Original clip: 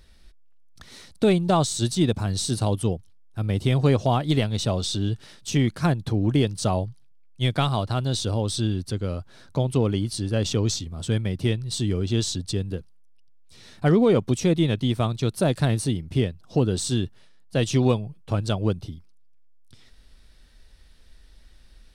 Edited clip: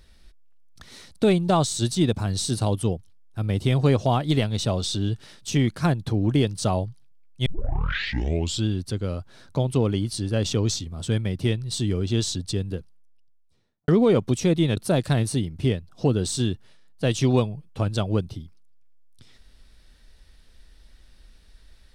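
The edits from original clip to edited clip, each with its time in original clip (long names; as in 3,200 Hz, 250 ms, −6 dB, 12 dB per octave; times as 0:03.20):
0:07.46: tape start 1.20 s
0:12.75–0:13.88: fade out and dull
0:14.77–0:15.29: remove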